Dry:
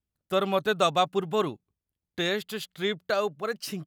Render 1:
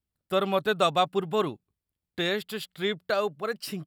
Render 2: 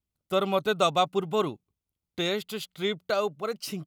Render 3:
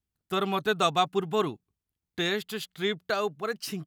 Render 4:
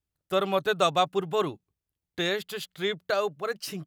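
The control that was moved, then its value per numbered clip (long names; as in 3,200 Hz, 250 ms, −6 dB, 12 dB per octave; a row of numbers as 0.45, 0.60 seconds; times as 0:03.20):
notch filter, centre frequency: 6,300, 1,700, 560, 220 Hertz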